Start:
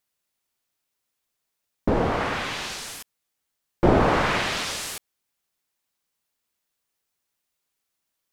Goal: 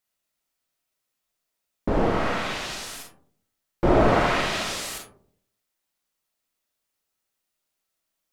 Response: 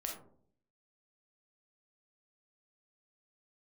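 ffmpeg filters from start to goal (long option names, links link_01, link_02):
-filter_complex "[1:a]atrim=start_sample=2205[link_01];[0:a][link_01]afir=irnorm=-1:irlink=0"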